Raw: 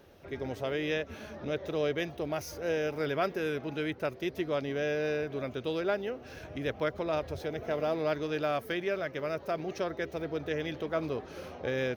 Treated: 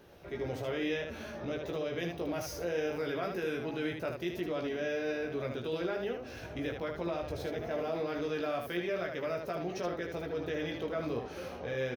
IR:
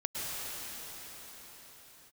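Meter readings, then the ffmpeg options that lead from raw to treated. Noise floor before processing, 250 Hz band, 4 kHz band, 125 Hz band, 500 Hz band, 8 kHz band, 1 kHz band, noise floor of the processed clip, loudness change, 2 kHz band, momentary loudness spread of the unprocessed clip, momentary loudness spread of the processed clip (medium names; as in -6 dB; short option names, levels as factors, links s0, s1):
-49 dBFS, -1.5 dB, -2.5 dB, -2.5 dB, -2.5 dB, no reading, -3.5 dB, -45 dBFS, -2.5 dB, -3.0 dB, 6 LU, 4 LU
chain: -filter_complex "[0:a]alimiter=level_in=1.58:limit=0.0631:level=0:latency=1:release=20,volume=0.631,asplit=2[s0][s1];[s1]aecho=0:1:17|76:0.631|0.562[s2];[s0][s2]amix=inputs=2:normalize=0,volume=0.891"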